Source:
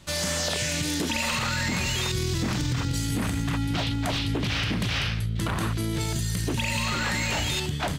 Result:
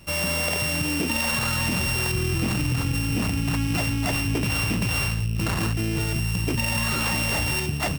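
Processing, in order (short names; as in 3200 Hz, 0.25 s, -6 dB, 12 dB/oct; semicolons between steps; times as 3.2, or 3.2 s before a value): sample sorter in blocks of 16 samples; notch 1500 Hz, Q 29; gain +2.5 dB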